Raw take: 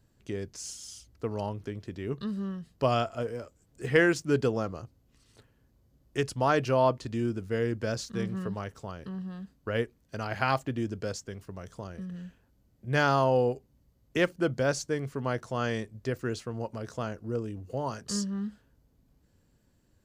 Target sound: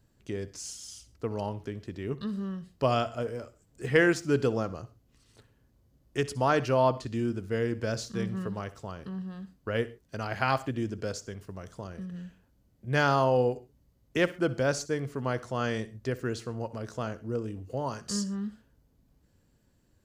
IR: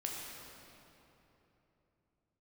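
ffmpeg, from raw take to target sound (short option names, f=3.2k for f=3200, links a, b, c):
-filter_complex "[0:a]asplit=2[a][b];[1:a]atrim=start_sample=2205,atrim=end_sample=3528,adelay=63[c];[b][c]afir=irnorm=-1:irlink=0,volume=-15.5dB[d];[a][d]amix=inputs=2:normalize=0"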